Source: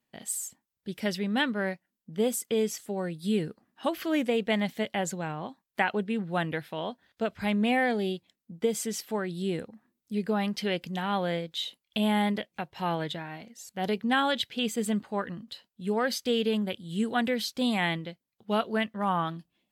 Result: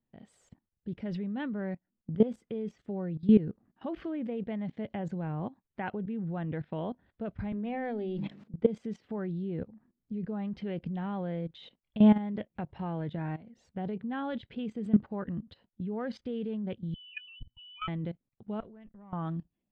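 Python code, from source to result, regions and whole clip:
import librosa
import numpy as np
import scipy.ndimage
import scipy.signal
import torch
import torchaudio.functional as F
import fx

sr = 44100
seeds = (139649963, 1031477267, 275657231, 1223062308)

y = fx.chain(x, sr, fx.highpass(hz=230.0, slope=12),
    fx.hum_notches(base_hz=50, count=6),
    fx.sustainer(db_per_s=42.0), at=(7.52, 8.54))
y = fx.chain(y, sr, fx.spec_expand(power=3.8),
    fx.freq_invert(carrier_hz=3200),
    fx.comb_fb(f0_hz=120.0, decay_s=0.25, harmonics='all', damping=0.0, mix_pct=30), at=(16.94, 17.88))
y = fx.chain(y, sr, fx.level_steps(step_db=23),
    fx.tube_stage(drive_db=37.0, bias=0.4), at=(18.6, 19.13))
y = scipy.signal.sosfilt(scipy.signal.butter(2, 3300.0, 'lowpass', fs=sr, output='sos'), y)
y = fx.tilt_eq(y, sr, slope=-4.0)
y = fx.level_steps(y, sr, step_db=17)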